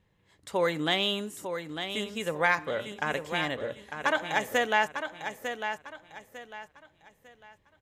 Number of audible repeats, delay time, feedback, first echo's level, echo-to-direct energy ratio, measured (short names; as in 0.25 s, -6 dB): 3, 0.9 s, 31%, -8.0 dB, -7.5 dB